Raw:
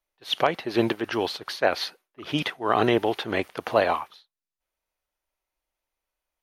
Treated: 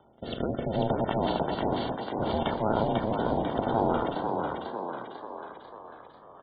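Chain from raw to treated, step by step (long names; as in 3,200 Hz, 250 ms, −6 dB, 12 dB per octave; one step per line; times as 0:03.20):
compressor on every frequency bin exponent 0.2
noise gate −20 dBFS, range −18 dB
gate on every frequency bin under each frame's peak −10 dB strong
parametric band 460 Hz +7 dB 0.23 octaves
ring modulation 220 Hz
rotating-speaker cabinet horn 0.7 Hz
on a send: echo with shifted repeats 495 ms, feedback 54%, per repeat +59 Hz, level −4 dB
on the sum: level −8 dB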